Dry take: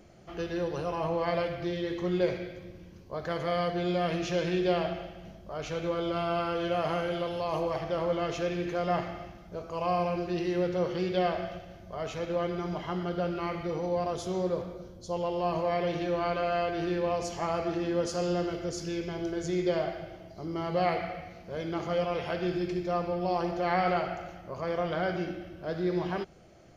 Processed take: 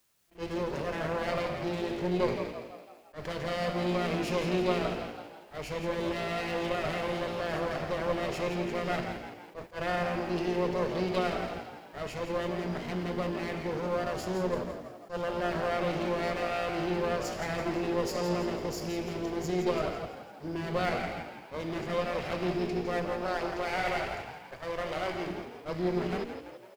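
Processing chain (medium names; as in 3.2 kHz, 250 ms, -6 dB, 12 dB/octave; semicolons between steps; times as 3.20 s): comb filter that takes the minimum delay 0.4 ms; 23.09–25.26 s: peaking EQ 200 Hz -12 dB 0.75 oct; gate -41 dBFS, range -30 dB; word length cut 12-bit, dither triangular; frequency-shifting echo 167 ms, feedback 51%, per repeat +58 Hz, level -9 dB; attacks held to a fixed rise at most 290 dB/s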